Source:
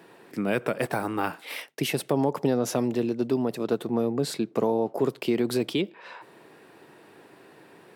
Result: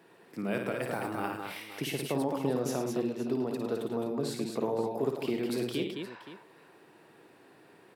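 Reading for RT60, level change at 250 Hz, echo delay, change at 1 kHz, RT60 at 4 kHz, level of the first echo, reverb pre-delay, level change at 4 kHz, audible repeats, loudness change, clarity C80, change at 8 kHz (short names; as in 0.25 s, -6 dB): none, -6.0 dB, 55 ms, -5.5 dB, none, -6.0 dB, none, -5.5 dB, 4, -6.0 dB, none, -5.5 dB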